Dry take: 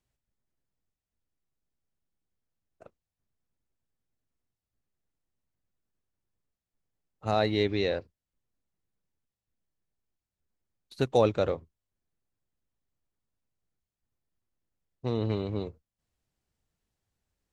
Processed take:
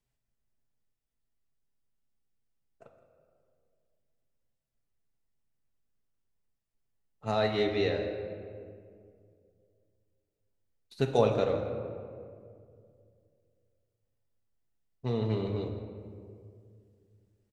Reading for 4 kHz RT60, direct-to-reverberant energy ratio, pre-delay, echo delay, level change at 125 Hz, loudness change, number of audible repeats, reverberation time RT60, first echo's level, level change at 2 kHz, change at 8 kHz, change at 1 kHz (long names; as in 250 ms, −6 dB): 1.2 s, 1.0 dB, 4 ms, 165 ms, −0.5 dB, −2.0 dB, 1, 2.3 s, −15.0 dB, −1.0 dB, can't be measured, −2.0 dB